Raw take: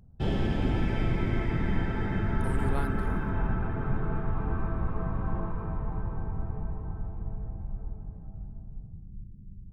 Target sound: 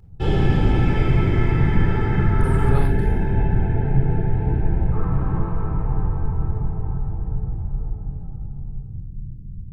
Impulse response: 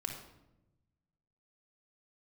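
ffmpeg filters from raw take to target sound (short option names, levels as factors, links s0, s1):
-filter_complex "[0:a]asettb=1/sr,asplit=3[s0][s1][s2];[s0]atrim=end=2.784[s3];[s1]atrim=start=2.78:end=4.92,asetpts=PTS-STARTPTS,afade=t=in:d=0.004:c=qsin,afade=t=out:st=2.136:d=0.004:c=qsin,asuperstop=centerf=1200:order=4:qfactor=1.8[s4];[s2]atrim=start=4.916[s5];[s3][s4]acrossfade=d=0.004:c1=hsin:c2=qsin[s6];[s6][s5]acrossfade=d=0.004:c1=qsin:c2=hsin[s7];[1:a]atrim=start_sample=2205,atrim=end_sample=4410[s8];[s7][s8]afir=irnorm=-1:irlink=0,volume=2.37"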